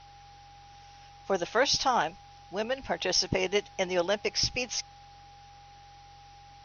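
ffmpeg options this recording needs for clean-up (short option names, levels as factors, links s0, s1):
-af "bandreject=f=45:t=h:w=4,bandreject=f=90:t=h:w=4,bandreject=f=135:t=h:w=4,bandreject=f=810:w=30,afwtdn=0.002"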